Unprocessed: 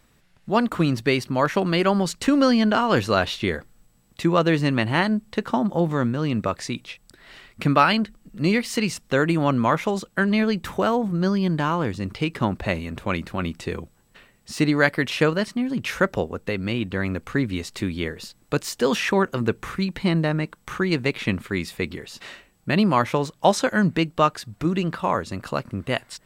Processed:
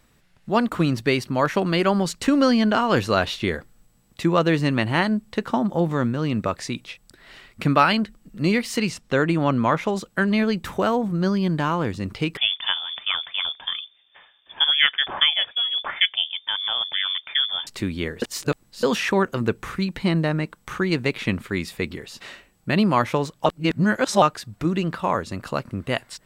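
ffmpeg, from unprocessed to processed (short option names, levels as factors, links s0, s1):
-filter_complex "[0:a]asettb=1/sr,asplit=3[s0][s1][s2];[s0]atrim=end=8.894[s3];[s1]atrim=start=8.89:end=9.96,asetpts=PTS-STARTPTS,afade=t=in:d=0.004:c=qsin,afade=t=out:st=1.066:d=0.004:c=qsin,highshelf=f=10000:g=-11.5[s4];[s2]atrim=start=9.956[s5];[s3][s4]acrossfade=d=0.004:c1=hsin:c2=qsin[s6];[s6][s5]acrossfade=d=0.004:c1=qsin:c2=hsin,asettb=1/sr,asplit=3[s7][s8][s9];[s7]atrim=end=12.374[s10];[s8]atrim=start=12.37:end=17.67,asetpts=PTS-STARTPTS,afade=t=in:d=0.004:c=qsin,afade=t=out:st=5.296:d=0.004:c=qsin,lowpass=f=3100:t=q:w=0.5098,lowpass=f=3100:t=q:w=0.6013,lowpass=f=3100:t=q:w=0.9,lowpass=f=3100:t=q:w=2.563,afreqshift=-3600[s11];[s9]atrim=start=17.666[s12];[s10][s11]acrossfade=d=0.004:c1=hsin:c2=qsin[s13];[s13][s12]acrossfade=d=0.004:c1=qsin:c2=hsin,asplit=5[s14][s15][s16][s17][s18];[s14]atrim=end=18.222[s19];[s15]atrim=start=18.218:end=18.832,asetpts=PTS-STARTPTS,areverse[s20];[s16]atrim=start=18.828:end=23.462[s21];[s17]atrim=start=23.458:end=24.222,asetpts=PTS-STARTPTS,areverse[s22];[s18]atrim=start=24.218[s23];[s19][s20]acrossfade=d=0.004:c1=hsin:c2=hsin[s24];[s24][s21]acrossfade=d=0.004:c1=hsin:c2=hsin[s25];[s25][s22]acrossfade=d=0.004:c1=hsin:c2=hsin[s26];[s26][s23]acrossfade=d=0.004:c1=hsin:c2=hsin"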